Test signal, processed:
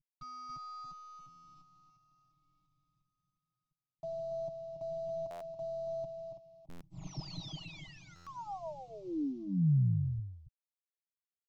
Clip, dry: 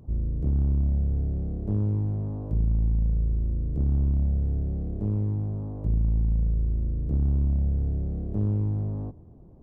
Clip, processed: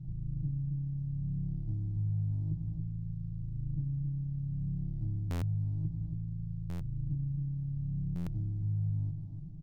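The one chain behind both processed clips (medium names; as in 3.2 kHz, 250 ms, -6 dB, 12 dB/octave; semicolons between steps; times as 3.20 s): CVSD coder 32 kbps; in parallel at +2 dB: peak limiter -25 dBFS; on the sum: FFT filter 200 Hz 0 dB, 340 Hz -21 dB, 1.2 kHz -28 dB; compression 12:1, threshold -28 dBFS; static phaser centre 320 Hz, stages 8; comb 6.3 ms, depth 63%; dynamic bell 940 Hz, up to +4 dB, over -59 dBFS, Q 0.76; on a send: delay 280 ms -7.5 dB; on the sum: buffer glitch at 5.30/6.69/8.15 s, samples 512, times 9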